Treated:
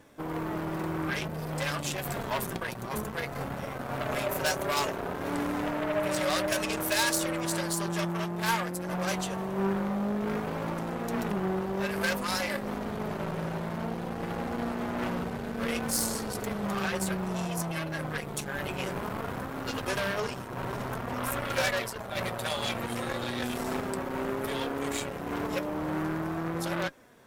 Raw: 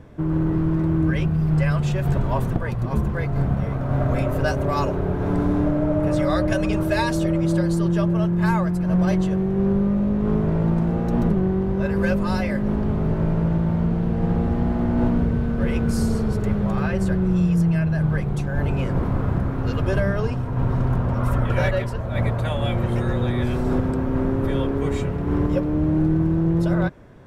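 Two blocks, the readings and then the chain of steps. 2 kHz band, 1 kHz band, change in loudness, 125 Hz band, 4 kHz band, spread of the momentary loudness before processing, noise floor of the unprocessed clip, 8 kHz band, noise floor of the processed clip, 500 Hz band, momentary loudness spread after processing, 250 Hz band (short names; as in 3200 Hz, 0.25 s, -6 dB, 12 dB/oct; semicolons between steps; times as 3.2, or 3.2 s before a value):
-1.0 dB, -2.5 dB, -9.5 dB, -17.0 dB, +4.0 dB, 4 LU, -25 dBFS, +8.5 dB, -38 dBFS, -7.0 dB, 6 LU, -12.0 dB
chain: added harmonics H 8 -18 dB, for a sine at -10 dBFS; RIAA curve recording; flange 0.56 Hz, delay 3.4 ms, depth 2.1 ms, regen +64%; gain -1 dB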